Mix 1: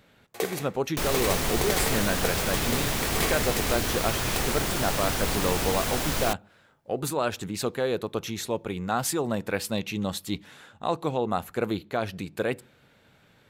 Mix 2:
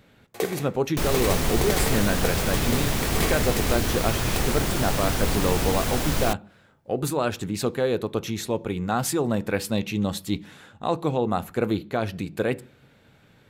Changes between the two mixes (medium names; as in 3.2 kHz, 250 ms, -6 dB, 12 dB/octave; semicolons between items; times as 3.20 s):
speech: send +6.5 dB; master: add bass shelf 370 Hz +6 dB